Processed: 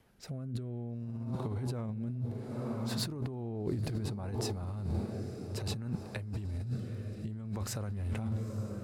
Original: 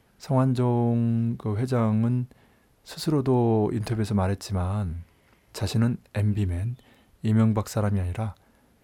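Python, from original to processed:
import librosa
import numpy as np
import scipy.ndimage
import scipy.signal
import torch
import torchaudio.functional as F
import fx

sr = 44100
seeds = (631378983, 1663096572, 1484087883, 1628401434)

y = fx.echo_diffused(x, sr, ms=902, feedback_pct=57, wet_db=-12)
y = fx.dynamic_eq(y, sr, hz=110.0, q=1.0, threshold_db=-32.0, ratio=4.0, max_db=4)
y = fx.rotary(y, sr, hz=0.6)
y = fx.over_compress(y, sr, threshold_db=-29.0, ratio=-1.0)
y = y * 10.0 ** (-7.0 / 20.0)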